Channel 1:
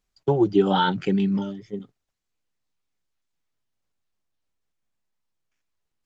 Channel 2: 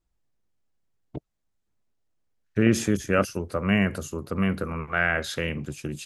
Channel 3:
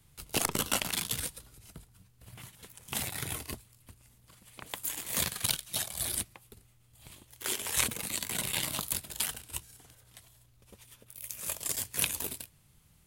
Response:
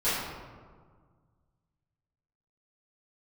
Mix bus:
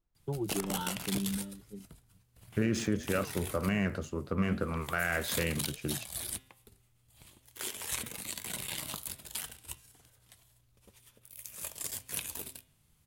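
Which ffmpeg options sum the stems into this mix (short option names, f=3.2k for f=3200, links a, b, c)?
-filter_complex "[0:a]bass=f=250:g=9,treble=f=4k:g=1,volume=-18.5dB[a];[1:a]adynamicsmooth=sensitivity=7:basefreq=3.6k,flanger=delay=7.2:depth=6.2:regen=-78:speed=1.9:shape=triangular,volume=1dB[b];[2:a]bandreject=f=130.5:t=h:w=4,bandreject=f=261:t=h:w=4,bandreject=f=391.5:t=h:w=4,bandreject=f=522:t=h:w=4,bandreject=f=652.5:t=h:w=4,bandreject=f=783:t=h:w=4,bandreject=f=913.5:t=h:w=4,bandreject=f=1.044k:t=h:w=4,bandreject=f=1.1745k:t=h:w=4,bandreject=f=1.305k:t=h:w=4,bandreject=f=1.4355k:t=h:w=4,bandreject=f=1.566k:t=h:w=4,bandreject=f=1.6965k:t=h:w=4,bandreject=f=1.827k:t=h:w=4,bandreject=f=1.9575k:t=h:w=4,bandreject=f=2.088k:t=h:w=4,bandreject=f=2.2185k:t=h:w=4,bandreject=f=2.349k:t=h:w=4,bandreject=f=2.4795k:t=h:w=4,bandreject=f=2.61k:t=h:w=4,bandreject=f=2.7405k:t=h:w=4,bandreject=f=2.871k:t=h:w=4,bandreject=f=3.0015k:t=h:w=4,bandreject=f=3.132k:t=h:w=4,bandreject=f=3.2625k:t=h:w=4,bandreject=f=3.393k:t=h:w=4,bandreject=f=3.5235k:t=h:w=4,bandreject=f=3.654k:t=h:w=4,bandreject=f=3.7845k:t=h:w=4,bandreject=f=3.915k:t=h:w=4,adelay=150,volume=-5dB[c];[a][b][c]amix=inputs=3:normalize=0,alimiter=limit=-19dB:level=0:latency=1:release=81"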